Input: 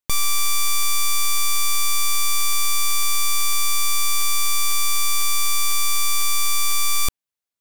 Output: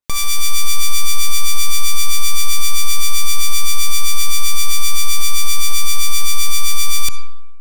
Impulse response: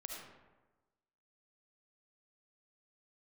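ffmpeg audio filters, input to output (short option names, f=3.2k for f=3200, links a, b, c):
-filter_complex "[0:a]acrossover=split=1400[a][b];[a]aeval=exprs='val(0)*(1-0.7/2+0.7/2*cos(2*PI*7.7*n/s))':c=same[c];[b]aeval=exprs='val(0)*(1-0.7/2-0.7/2*cos(2*PI*7.7*n/s))':c=same[d];[c][d]amix=inputs=2:normalize=0,asplit=2[e][f];[f]highshelf=f=8.1k:g=9[g];[1:a]atrim=start_sample=2205,lowpass=6.7k[h];[g][h]afir=irnorm=-1:irlink=0,volume=-6dB[i];[e][i]amix=inputs=2:normalize=0,volume=3.5dB"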